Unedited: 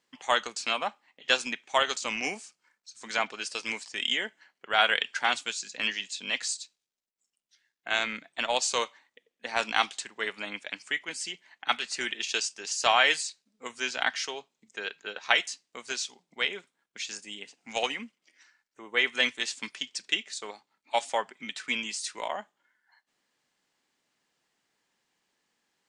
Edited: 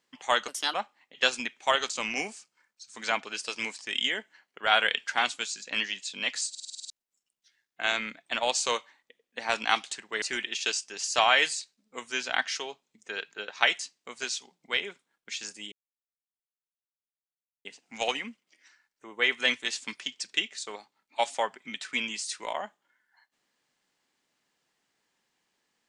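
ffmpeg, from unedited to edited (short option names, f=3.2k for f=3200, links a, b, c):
-filter_complex "[0:a]asplit=13[a][b][c][d][e][f][g][h][i][j][k][l][m];[a]atrim=end=0.484[n];[b]atrim=start=0.48:end=0.81,asetpts=PTS-STARTPTS,asetrate=56007,aresample=44100,atrim=end_sample=11459,asetpts=PTS-STARTPTS[o];[c]atrim=start=0.806:end=6.622[p];[d]atrim=start=6.568:end=6.622[q];[e]atrim=start=6.568:end=6.622[r];[f]atrim=start=6.568:end=6.622[s];[g]atrim=start=6.568:end=6.622[t];[h]atrim=start=6.568:end=6.622[u];[i]atrim=start=6.568:end=6.622[v];[j]atrim=start=6.568:end=6.622[w];[k]atrim=start=6.968:end=10.292[x];[l]atrim=start=11.898:end=17.4,asetpts=PTS-STARTPTS,afade=t=out:st=5.498:d=0.004:c=hsin,apad=pad_dur=1.93[y];[m]atrim=start=17.4,asetpts=PTS-STARTPTS,afade=t=in:d=0.004:c=hsin[z];[n][o]acrossfade=d=0.004:c1=hsin:c2=hsin[aa];[aa][p]acrossfade=d=0.004:c1=hsin:c2=hsin[ab];[ab][q]acrossfade=d=0.004:c1=hsin:c2=hsin[ac];[ac][r]acrossfade=d=0.004:c1=hsin:c2=hsin[ad];[ad][s]acrossfade=d=0.004:c1=hsin:c2=hsin[ae];[ae][t]acrossfade=d=0.004:c1=hsin:c2=hsin[af];[af][u]acrossfade=d=0.004:c1=hsin:c2=hsin[ag];[ag][v]acrossfade=d=0.004:c1=hsin:c2=hsin[ah];[ah][w]acrossfade=d=0.004:c1=hsin:c2=hsin[ai];[ai][x]acrossfade=d=0.004:c1=hsin:c2=hsin[aj];[y][z]concat=n=2:v=0:a=1[ak];[aj][ak]acrossfade=d=0.004:c1=hsin:c2=hsin"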